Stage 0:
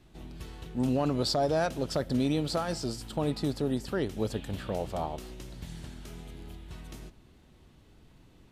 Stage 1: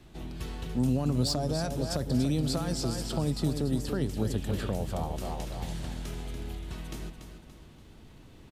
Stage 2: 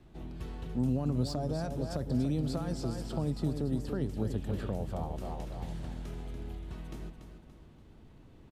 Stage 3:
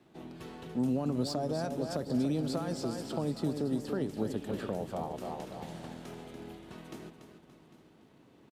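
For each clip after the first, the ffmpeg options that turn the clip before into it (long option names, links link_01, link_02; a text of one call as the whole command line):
ffmpeg -i in.wav -filter_complex "[0:a]aecho=1:1:287|574|861|1148|1435:0.376|0.154|0.0632|0.0259|0.0106,acrossover=split=220|5700[link_01][link_02][link_03];[link_02]acompressor=threshold=-38dB:ratio=6[link_04];[link_03]volume=32.5dB,asoftclip=hard,volume=-32.5dB[link_05];[link_01][link_04][link_05]amix=inputs=3:normalize=0,volume=5dB" out.wav
ffmpeg -i in.wav -af "highshelf=frequency=2100:gain=-10,volume=-3dB" out.wav
ffmpeg -i in.wav -filter_complex "[0:a]highpass=210,asplit=2[link_01][link_02];[link_02]aeval=exprs='sgn(val(0))*max(abs(val(0))-0.00133,0)':channel_layout=same,volume=-7dB[link_03];[link_01][link_03]amix=inputs=2:normalize=0,aecho=1:1:800:0.133" out.wav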